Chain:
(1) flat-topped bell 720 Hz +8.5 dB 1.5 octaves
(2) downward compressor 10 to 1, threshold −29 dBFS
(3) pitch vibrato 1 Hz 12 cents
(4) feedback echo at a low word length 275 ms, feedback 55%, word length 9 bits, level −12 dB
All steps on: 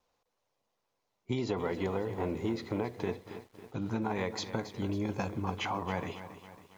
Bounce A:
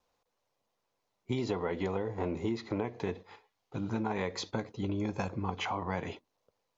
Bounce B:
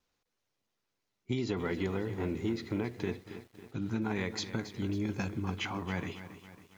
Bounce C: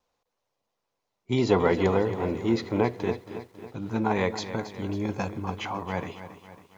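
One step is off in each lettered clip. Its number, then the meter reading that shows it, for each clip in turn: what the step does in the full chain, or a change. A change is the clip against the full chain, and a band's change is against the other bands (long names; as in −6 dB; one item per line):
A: 4, change in momentary loudness spread −5 LU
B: 1, 1 kHz band −6.5 dB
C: 2, average gain reduction 5.0 dB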